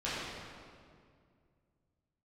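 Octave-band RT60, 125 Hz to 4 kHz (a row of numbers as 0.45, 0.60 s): 3.2, 2.7, 2.3, 2.0, 1.7, 1.5 s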